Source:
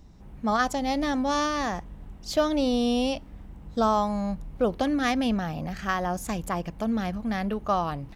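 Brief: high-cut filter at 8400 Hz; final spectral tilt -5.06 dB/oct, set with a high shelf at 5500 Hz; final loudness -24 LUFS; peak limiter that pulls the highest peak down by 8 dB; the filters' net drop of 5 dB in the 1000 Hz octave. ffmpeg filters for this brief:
-af "lowpass=8.4k,equalizer=f=1k:t=o:g=-7,highshelf=f=5.5k:g=5,volume=7.5dB,alimiter=limit=-14dB:level=0:latency=1"

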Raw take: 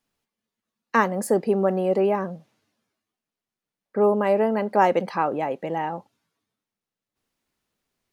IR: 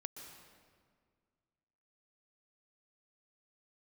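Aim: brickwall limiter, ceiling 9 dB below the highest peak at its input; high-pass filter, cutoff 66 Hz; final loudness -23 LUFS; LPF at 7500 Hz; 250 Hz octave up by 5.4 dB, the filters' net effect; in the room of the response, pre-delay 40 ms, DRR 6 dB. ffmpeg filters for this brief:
-filter_complex "[0:a]highpass=66,lowpass=7.5k,equalizer=f=250:t=o:g=7.5,alimiter=limit=-11.5dB:level=0:latency=1,asplit=2[a][b];[1:a]atrim=start_sample=2205,adelay=40[c];[b][c]afir=irnorm=-1:irlink=0,volume=-3dB[d];[a][d]amix=inputs=2:normalize=0,volume=-1dB"

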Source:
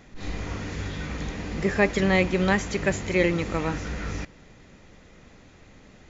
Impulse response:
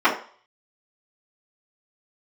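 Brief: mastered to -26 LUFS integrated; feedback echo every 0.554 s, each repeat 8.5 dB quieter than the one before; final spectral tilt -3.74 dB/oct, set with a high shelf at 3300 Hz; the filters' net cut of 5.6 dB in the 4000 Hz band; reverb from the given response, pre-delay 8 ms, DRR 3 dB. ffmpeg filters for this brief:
-filter_complex "[0:a]highshelf=f=3.3k:g=-3.5,equalizer=f=4k:t=o:g=-5,aecho=1:1:554|1108|1662|2216:0.376|0.143|0.0543|0.0206,asplit=2[a][b];[1:a]atrim=start_sample=2205,adelay=8[c];[b][c]afir=irnorm=-1:irlink=0,volume=-24.5dB[d];[a][d]amix=inputs=2:normalize=0,volume=-1dB"

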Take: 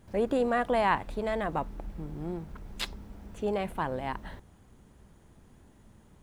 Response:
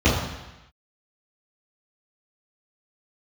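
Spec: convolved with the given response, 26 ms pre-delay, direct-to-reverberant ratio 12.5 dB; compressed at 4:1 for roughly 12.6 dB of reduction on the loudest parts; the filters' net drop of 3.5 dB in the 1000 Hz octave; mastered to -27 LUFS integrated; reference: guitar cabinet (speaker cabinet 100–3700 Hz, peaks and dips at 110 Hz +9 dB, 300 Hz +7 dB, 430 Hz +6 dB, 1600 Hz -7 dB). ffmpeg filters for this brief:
-filter_complex "[0:a]equalizer=f=1k:t=o:g=-4.5,acompressor=threshold=-39dB:ratio=4,asplit=2[a][b];[1:a]atrim=start_sample=2205,adelay=26[c];[b][c]afir=irnorm=-1:irlink=0,volume=-32.5dB[d];[a][d]amix=inputs=2:normalize=0,highpass=100,equalizer=f=110:t=q:w=4:g=9,equalizer=f=300:t=q:w=4:g=7,equalizer=f=430:t=q:w=4:g=6,equalizer=f=1.6k:t=q:w=4:g=-7,lowpass=f=3.7k:w=0.5412,lowpass=f=3.7k:w=1.3066,volume=13dB"

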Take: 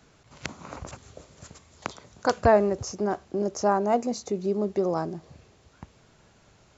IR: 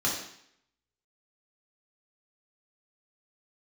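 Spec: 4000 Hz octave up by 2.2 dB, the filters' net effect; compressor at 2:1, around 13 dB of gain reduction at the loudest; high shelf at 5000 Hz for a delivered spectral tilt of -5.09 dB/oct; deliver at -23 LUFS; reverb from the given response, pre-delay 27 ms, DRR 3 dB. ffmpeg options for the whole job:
-filter_complex "[0:a]equalizer=f=4k:t=o:g=7.5,highshelf=f=5k:g=-8,acompressor=threshold=-38dB:ratio=2,asplit=2[a][b];[1:a]atrim=start_sample=2205,adelay=27[c];[b][c]afir=irnorm=-1:irlink=0,volume=-12.5dB[d];[a][d]amix=inputs=2:normalize=0,volume=12dB"

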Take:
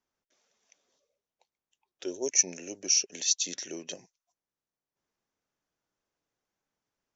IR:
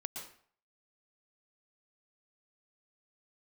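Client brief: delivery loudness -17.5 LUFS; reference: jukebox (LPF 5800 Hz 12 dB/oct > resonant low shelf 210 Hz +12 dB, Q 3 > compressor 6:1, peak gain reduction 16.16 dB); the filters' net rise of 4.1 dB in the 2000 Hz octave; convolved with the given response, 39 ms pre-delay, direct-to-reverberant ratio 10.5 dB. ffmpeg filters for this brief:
-filter_complex "[0:a]equalizer=f=2k:t=o:g=5.5,asplit=2[a][b];[1:a]atrim=start_sample=2205,adelay=39[c];[b][c]afir=irnorm=-1:irlink=0,volume=-9.5dB[d];[a][d]amix=inputs=2:normalize=0,lowpass=5.8k,lowshelf=f=210:t=q:w=3:g=12,acompressor=threshold=-37dB:ratio=6,volume=23dB"

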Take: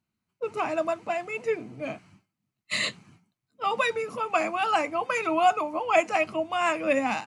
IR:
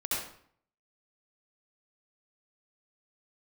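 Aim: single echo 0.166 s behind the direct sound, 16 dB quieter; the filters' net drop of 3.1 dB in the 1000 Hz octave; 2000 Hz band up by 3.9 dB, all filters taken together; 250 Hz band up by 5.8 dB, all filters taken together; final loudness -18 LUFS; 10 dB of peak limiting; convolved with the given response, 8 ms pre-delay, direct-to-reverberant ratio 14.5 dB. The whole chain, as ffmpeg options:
-filter_complex "[0:a]equalizer=f=250:t=o:g=8,equalizer=f=1k:t=o:g=-7,equalizer=f=2k:t=o:g=6.5,alimiter=limit=-18dB:level=0:latency=1,aecho=1:1:166:0.158,asplit=2[a][b];[1:a]atrim=start_sample=2205,adelay=8[c];[b][c]afir=irnorm=-1:irlink=0,volume=-21dB[d];[a][d]amix=inputs=2:normalize=0,volume=10.5dB"

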